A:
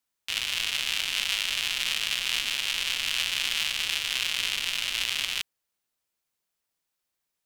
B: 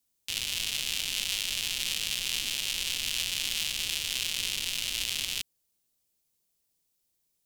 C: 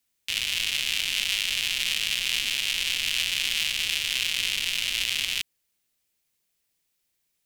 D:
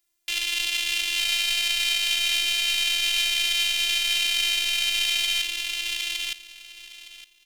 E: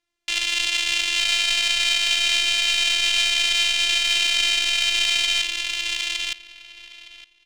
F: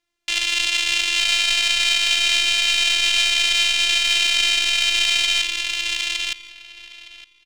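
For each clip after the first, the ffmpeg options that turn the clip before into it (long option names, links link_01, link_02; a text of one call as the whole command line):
ffmpeg -i in.wav -filter_complex "[0:a]equalizer=frequency=1400:width=0.51:gain=-14,asplit=2[link_01][link_02];[link_02]alimiter=level_in=1.5dB:limit=-24dB:level=0:latency=1:release=99,volume=-1.5dB,volume=3dB[link_03];[link_01][link_03]amix=inputs=2:normalize=0" out.wav
ffmpeg -i in.wav -af "equalizer=frequency=2100:width_type=o:width=1.5:gain=9" out.wav
ffmpeg -i in.wav -filter_complex "[0:a]afftfilt=real='hypot(re,im)*cos(PI*b)':imag='0':win_size=512:overlap=0.75,asplit=2[link_01][link_02];[link_02]aecho=0:1:913|1826|2739:0.708|0.127|0.0229[link_03];[link_01][link_03]amix=inputs=2:normalize=0,volume=4.5dB" out.wav
ffmpeg -i in.wav -af "adynamicsmooth=sensitivity=2:basefreq=4000,volume=4dB" out.wav
ffmpeg -i in.wav -filter_complex "[0:a]asplit=2[link_01][link_02];[link_02]adelay=163.3,volume=-19dB,highshelf=frequency=4000:gain=-3.67[link_03];[link_01][link_03]amix=inputs=2:normalize=0,volume=2dB" out.wav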